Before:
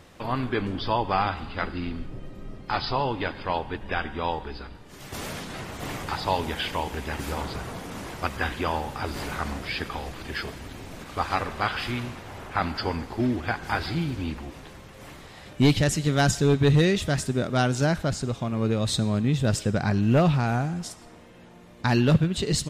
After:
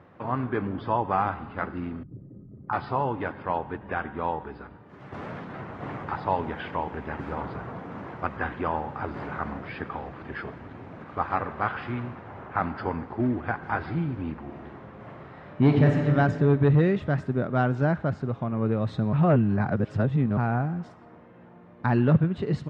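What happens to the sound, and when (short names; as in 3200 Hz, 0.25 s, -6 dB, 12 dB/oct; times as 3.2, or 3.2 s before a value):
2.03–2.73 formant sharpening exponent 2
14.39–16.03 reverb throw, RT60 2.5 s, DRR 0.5 dB
19.13–20.37 reverse
whole clip: Chebyshev band-pass 110–1400 Hz, order 2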